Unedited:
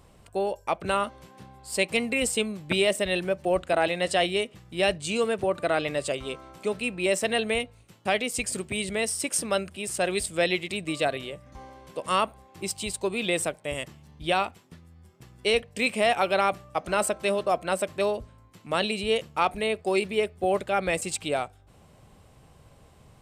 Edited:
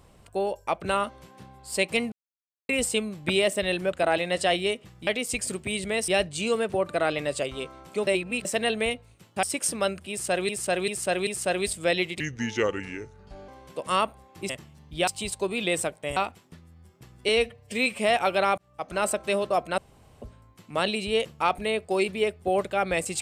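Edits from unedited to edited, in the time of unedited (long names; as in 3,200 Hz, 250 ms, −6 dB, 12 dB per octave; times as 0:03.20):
0:02.12: splice in silence 0.57 s
0:03.35–0:03.62: remove
0:06.76–0:07.14: reverse
0:08.12–0:09.13: move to 0:04.77
0:09.80–0:10.19: repeat, 4 plays
0:10.73–0:11.68: play speed 74%
0:13.78–0:14.36: move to 0:12.69
0:15.48–0:15.95: time-stretch 1.5×
0:16.54–0:17.20: fade in equal-power
0:17.74–0:18.18: fill with room tone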